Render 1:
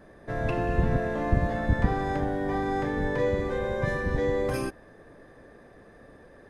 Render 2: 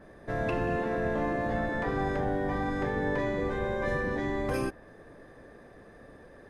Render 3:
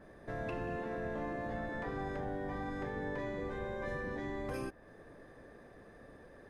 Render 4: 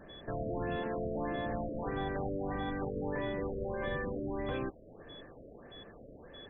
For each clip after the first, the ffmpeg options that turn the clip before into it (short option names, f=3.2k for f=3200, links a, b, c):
-af "afftfilt=real='re*lt(hypot(re,im),0.282)':imag='im*lt(hypot(re,im),0.282)':win_size=1024:overlap=0.75,adynamicequalizer=threshold=0.00282:dfrequency=3300:dqfactor=0.7:tfrequency=3300:tqfactor=0.7:attack=5:release=100:ratio=0.375:range=2:mode=cutabove:tftype=highshelf"
-af "acompressor=threshold=-41dB:ratio=1.5,volume=-4dB"
-af "aeval=exprs='val(0)+0.00224*sin(2*PI*3400*n/s)':c=same,afftfilt=real='re*lt(b*sr/1024,660*pow(3900/660,0.5+0.5*sin(2*PI*1.6*pts/sr)))':imag='im*lt(b*sr/1024,660*pow(3900/660,0.5+0.5*sin(2*PI*1.6*pts/sr)))':win_size=1024:overlap=0.75,volume=3.5dB"